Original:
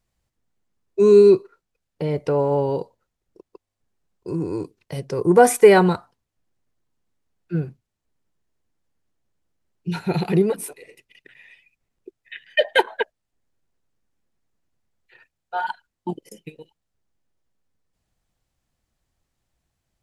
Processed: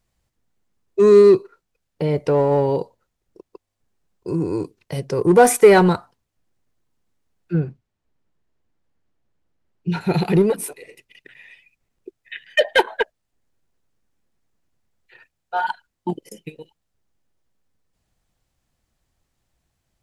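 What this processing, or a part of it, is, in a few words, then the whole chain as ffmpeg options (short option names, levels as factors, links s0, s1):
parallel distortion: -filter_complex "[0:a]asettb=1/sr,asplit=3[s0][s1][s2];[s0]atrim=end=7.534[s3];[s1]atrim=start=7.53:end=10.01,asetpts=PTS-STARTPTS,afade=t=in:d=0.004:c=qsin,afade=t=out:st=2.476:d=0.004:c=qsin,aemphasis=mode=reproduction:type=50fm[s4];[s2]atrim=start=10.006[s5];[s3][s4]acrossfade=d=0.004:c1=hsin:c2=qsin[s6];[s6][s5]acrossfade=d=0.004:c1=qsin:c2=hsin,asplit=2[s7][s8];[s8]asoftclip=type=hard:threshold=0.15,volume=0.631[s9];[s7][s9]amix=inputs=2:normalize=0,volume=0.891"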